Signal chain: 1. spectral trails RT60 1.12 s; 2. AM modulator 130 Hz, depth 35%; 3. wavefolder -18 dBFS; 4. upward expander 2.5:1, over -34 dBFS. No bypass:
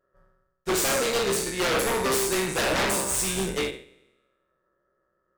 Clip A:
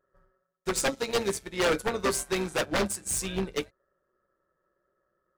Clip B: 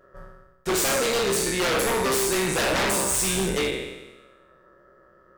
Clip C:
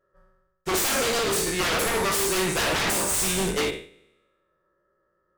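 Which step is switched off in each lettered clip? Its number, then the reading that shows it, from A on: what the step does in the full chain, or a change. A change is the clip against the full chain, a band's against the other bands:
1, 250 Hz band +2.5 dB; 4, crest factor change -1.5 dB; 2, momentary loudness spread change -1 LU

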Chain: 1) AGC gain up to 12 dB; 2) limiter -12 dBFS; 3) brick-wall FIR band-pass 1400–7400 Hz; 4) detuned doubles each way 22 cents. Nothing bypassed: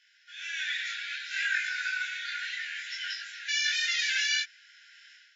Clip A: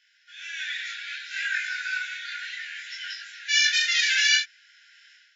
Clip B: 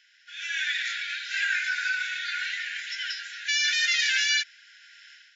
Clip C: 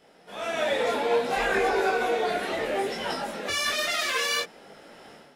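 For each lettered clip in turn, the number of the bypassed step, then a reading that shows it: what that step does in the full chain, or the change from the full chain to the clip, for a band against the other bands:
2, crest factor change +3.0 dB; 4, loudness change +4.0 LU; 3, crest factor change -3.5 dB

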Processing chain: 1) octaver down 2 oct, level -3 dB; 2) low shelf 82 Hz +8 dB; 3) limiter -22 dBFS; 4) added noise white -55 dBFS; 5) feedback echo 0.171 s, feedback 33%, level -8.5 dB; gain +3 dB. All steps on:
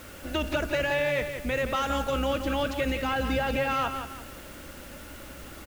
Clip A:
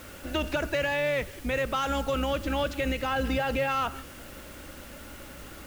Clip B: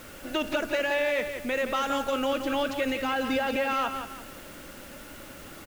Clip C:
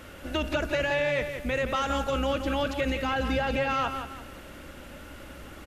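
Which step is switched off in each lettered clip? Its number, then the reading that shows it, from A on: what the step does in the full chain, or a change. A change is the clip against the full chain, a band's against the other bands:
5, crest factor change -2.0 dB; 1, 125 Hz band -14.0 dB; 4, 8 kHz band -2.5 dB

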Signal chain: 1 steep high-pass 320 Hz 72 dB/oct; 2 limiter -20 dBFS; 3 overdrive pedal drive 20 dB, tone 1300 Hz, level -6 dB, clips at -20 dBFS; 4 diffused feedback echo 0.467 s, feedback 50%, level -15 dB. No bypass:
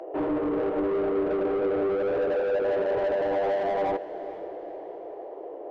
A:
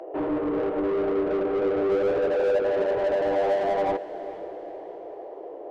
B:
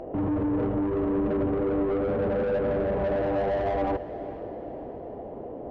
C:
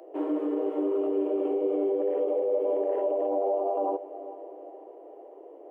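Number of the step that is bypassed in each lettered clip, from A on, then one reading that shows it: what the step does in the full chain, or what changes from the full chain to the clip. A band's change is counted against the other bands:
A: 2, mean gain reduction 2.0 dB; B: 1, 125 Hz band +14.0 dB; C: 3, momentary loudness spread change +5 LU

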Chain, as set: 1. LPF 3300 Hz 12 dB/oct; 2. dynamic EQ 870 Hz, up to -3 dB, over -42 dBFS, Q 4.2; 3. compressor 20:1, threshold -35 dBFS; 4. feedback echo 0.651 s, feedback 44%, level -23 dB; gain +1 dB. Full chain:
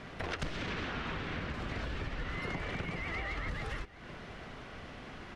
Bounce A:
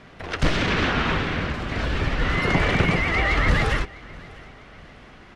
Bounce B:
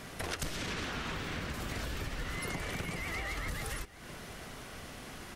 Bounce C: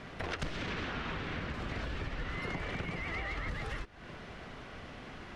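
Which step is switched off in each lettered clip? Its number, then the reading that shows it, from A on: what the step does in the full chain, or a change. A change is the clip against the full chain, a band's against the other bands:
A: 3, mean gain reduction 10.5 dB; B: 1, 8 kHz band +14.0 dB; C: 4, echo-to-direct -22.0 dB to none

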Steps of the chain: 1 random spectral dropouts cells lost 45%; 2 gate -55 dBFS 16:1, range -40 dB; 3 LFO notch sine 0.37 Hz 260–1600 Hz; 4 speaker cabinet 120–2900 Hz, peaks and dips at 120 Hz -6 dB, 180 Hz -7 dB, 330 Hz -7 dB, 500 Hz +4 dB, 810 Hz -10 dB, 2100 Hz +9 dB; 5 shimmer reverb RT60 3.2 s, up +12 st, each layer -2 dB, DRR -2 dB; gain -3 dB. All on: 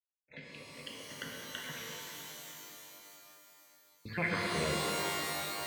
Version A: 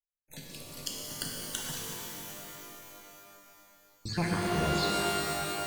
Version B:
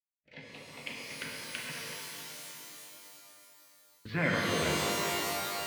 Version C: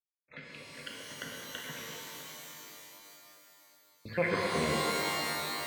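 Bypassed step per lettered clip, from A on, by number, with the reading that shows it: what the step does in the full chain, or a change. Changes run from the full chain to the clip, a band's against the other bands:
4, crest factor change +2.0 dB; 1, loudness change +3.0 LU; 3, 500 Hz band +3.0 dB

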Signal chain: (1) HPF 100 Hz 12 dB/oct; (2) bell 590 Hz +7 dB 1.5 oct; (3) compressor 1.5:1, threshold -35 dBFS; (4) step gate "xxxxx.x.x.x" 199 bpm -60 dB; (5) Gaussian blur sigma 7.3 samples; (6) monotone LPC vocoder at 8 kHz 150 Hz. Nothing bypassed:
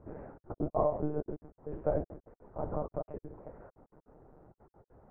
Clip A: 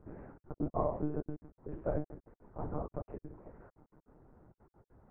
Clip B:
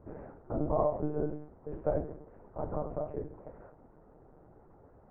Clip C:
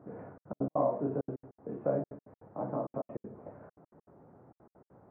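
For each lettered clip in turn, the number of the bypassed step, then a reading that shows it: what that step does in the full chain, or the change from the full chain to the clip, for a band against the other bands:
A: 2, 500 Hz band -4.5 dB; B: 4, loudness change +1.0 LU; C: 6, 250 Hz band +2.0 dB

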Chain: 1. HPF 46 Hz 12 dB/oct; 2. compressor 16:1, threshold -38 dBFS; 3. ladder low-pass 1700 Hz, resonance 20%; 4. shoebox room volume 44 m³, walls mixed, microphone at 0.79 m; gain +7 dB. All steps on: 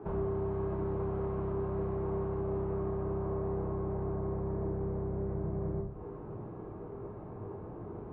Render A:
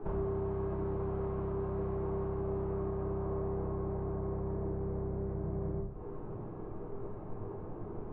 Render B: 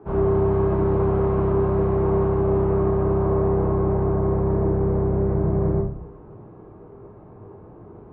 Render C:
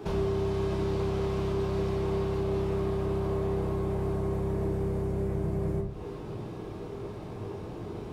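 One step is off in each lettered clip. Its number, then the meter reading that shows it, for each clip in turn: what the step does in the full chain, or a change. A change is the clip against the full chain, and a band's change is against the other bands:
1, momentary loudness spread change -1 LU; 2, mean gain reduction 10.0 dB; 3, 2 kHz band +6.0 dB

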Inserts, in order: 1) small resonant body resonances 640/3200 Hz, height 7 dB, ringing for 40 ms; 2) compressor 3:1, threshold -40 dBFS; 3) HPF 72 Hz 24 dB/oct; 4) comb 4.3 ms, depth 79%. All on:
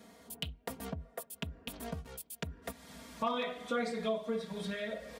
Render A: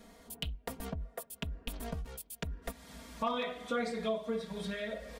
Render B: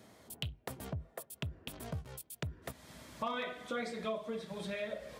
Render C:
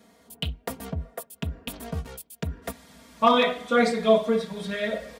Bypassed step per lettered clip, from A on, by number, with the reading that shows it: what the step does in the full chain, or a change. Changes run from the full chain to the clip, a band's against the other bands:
3, 125 Hz band +2.0 dB; 4, 125 Hz band +5.0 dB; 2, mean gain reduction 8.0 dB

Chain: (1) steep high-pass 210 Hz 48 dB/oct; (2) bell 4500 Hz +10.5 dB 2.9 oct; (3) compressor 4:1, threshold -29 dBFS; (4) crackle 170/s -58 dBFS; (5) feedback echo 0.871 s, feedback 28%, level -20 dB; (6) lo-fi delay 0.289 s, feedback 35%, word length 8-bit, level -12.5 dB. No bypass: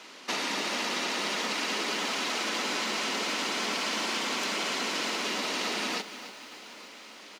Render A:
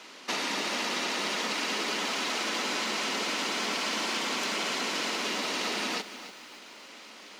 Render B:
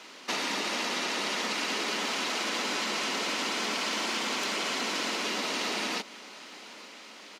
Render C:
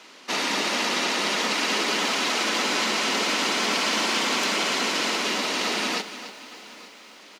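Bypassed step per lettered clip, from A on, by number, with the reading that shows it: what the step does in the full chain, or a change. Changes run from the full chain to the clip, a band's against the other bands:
5, momentary loudness spread change +1 LU; 6, momentary loudness spread change +1 LU; 3, mean gain reduction 5.0 dB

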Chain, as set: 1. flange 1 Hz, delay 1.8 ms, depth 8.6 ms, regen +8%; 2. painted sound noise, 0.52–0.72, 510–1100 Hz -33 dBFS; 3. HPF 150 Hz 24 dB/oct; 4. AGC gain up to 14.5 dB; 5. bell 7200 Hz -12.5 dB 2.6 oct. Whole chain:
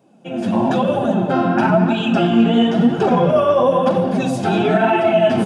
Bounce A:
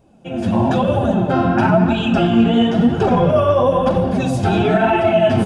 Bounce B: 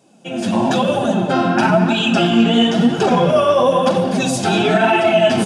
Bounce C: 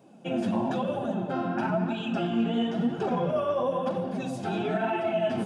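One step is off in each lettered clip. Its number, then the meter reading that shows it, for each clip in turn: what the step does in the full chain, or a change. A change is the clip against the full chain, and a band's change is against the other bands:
3, 125 Hz band +3.5 dB; 5, 4 kHz band +7.0 dB; 4, loudness change -12.5 LU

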